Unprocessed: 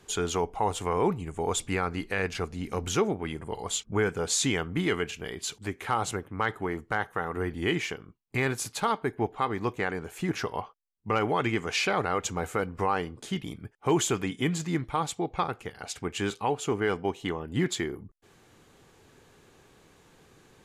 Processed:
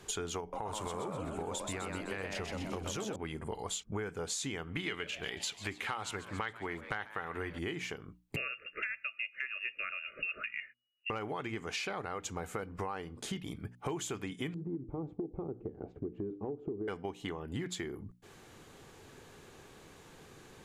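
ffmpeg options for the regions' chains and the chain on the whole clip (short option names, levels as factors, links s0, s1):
-filter_complex "[0:a]asettb=1/sr,asplit=3[s0][s1][s2];[s0]atrim=end=0.404[s3];[s1]atrim=start=0.4:end=3.16,asetpts=PTS-STARTPTS,afade=t=in:d=0.004:c=qsin,afade=t=out:st=2.756:d=0.004:c=qsin,acompressor=threshold=0.0447:ratio=6:attack=3.2:release=140:knee=1:detection=peak,asplit=8[s4][s5][s6][s7][s8][s9][s10][s11];[s5]adelay=127,afreqshift=110,volume=0.631[s12];[s6]adelay=254,afreqshift=220,volume=0.327[s13];[s7]adelay=381,afreqshift=330,volume=0.17[s14];[s8]adelay=508,afreqshift=440,volume=0.0891[s15];[s9]adelay=635,afreqshift=550,volume=0.0462[s16];[s10]adelay=762,afreqshift=660,volume=0.024[s17];[s11]adelay=889,afreqshift=770,volume=0.0124[s18];[s4][s12][s13][s14][s15][s16][s17][s18]amix=inputs=8:normalize=0,atrim=end_sample=121716[s19];[s2]atrim=start=3.156[s20];[s3][s19]acrossfade=d=0.004:c1=hsin:c2=qsin[s21];[s21][s20]acrossfade=d=0.004:c1=qsin:c2=hsin,asettb=1/sr,asplit=3[s22][s23][s24];[s22]atrim=end=4.674[s25];[s23]atrim=start=4.67:end=7.59,asetpts=PTS-STARTPTS,afade=t=in:d=0.004:c=qsin,afade=t=out:st=2.916:d=0.004:c=qsin,equalizer=f=2700:t=o:w=1.9:g=10,asplit=7[s26][s27][s28][s29][s30][s31][s32];[s27]adelay=139,afreqshift=130,volume=0.119[s33];[s28]adelay=278,afreqshift=260,volume=0.0724[s34];[s29]adelay=417,afreqshift=390,volume=0.0442[s35];[s30]adelay=556,afreqshift=520,volume=0.0269[s36];[s31]adelay=695,afreqshift=650,volume=0.0164[s37];[s32]adelay=834,afreqshift=780,volume=0.01[s38];[s26][s33][s34][s35][s36][s37][s38]amix=inputs=7:normalize=0,atrim=end_sample=128772[s39];[s24]atrim=start=7.586[s40];[s25][s39]acrossfade=d=0.004:c1=hsin:c2=qsin[s41];[s41][s40]acrossfade=d=0.004:c1=qsin:c2=hsin,asettb=1/sr,asplit=3[s42][s43][s44];[s42]atrim=end=8.364[s45];[s43]atrim=start=8.36:end=11.1,asetpts=PTS-STARTPTS,afade=t=in:d=0.004:c=qsin,afade=t=out:st=2.736:d=0.004:c=qsin,lowpass=f=2500:t=q:w=0.5098,lowpass=f=2500:t=q:w=0.6013,lowpass=f=2500:t=q:w=0.9,lowpass=f=2500:t=q:w=2.563,afreqshift=-2900,asuperstop=centerf=870:order=20:qfactor=1.8[s46];[s44]atrim=start=11.096[s47];[s45][s46]acrossfade=d=0.004:c1=hsin:c2=qsin[s48];[s48][s47]acrossfade=d=0.004:c1=qsin:c2=hsin,asettb=1/sr,asplit=3[s49][s50][s51];[s49]atrim=end=14.544[s52];[s50]atrim=start=14.54:end=16.88,asetpts=PTS-STARTPTS,afade=t=in:d=0.004:c=qsin,afade=t=out:st=2.336:d=0.004:c=qsin,lowpass=f=360:t=q:w=2.9,acompressor=threshold=0.0251:ratio=2:attack=3.2:release=140:knee=1:detection=peak[s53];[s51]atrim=start=16.876[s54];[s52][s53]acrossfade=d=0.004:c1=hsin:c2=qsin[s55];[s55][s54]acrossfade=d=0.004:c1=qsin:c2=hsin,bandreject=f=60:t=h:w=6,bandreject=f=120:t=h:w=6,bandreject=f=180:t=h:w=6,bandreject=f=240:t=h:w=6,bandreject=f=300:t=h:w=6,acompressor=threshold=0.0112:ratio=6,volume=1.41"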